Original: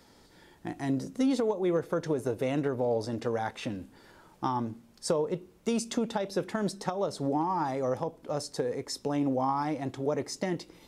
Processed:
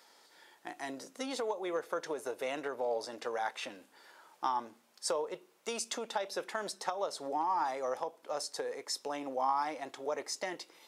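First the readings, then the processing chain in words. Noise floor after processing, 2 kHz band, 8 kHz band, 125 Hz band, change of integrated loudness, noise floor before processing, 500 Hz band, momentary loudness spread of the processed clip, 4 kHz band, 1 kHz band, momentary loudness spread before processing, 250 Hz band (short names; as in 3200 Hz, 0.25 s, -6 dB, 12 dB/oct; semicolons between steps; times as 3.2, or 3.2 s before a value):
-66 dBFS, 0.0 dB, 0.0 dB, -25.5 dB, -5.5 dB, -59 dBFS, -6.5 dB, 10 LU, 0.0 dB, -1.5 dB, 8 LU, -15.0 dB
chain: HPF 660 Hz 12 dB/oct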